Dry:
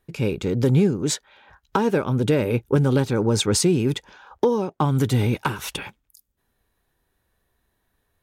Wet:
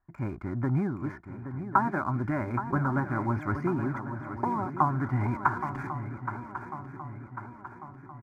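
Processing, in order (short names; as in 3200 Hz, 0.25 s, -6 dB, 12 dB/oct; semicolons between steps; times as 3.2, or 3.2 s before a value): elliptic low-pass 2400 Hz, stop band 40 dB; low shelf 480 Hz -7.5 dB; comb 2.9 ms, depth 37%; in parallel at -8 dB: crossover distortion -43 dBFS; on the sum: fixed phaser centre 1100 Hz, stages 4; on a send: swung echo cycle 1.096 s, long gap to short 3:1, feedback 54%, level -10 dB; on the sum: mismatched tape noise reduction decoder only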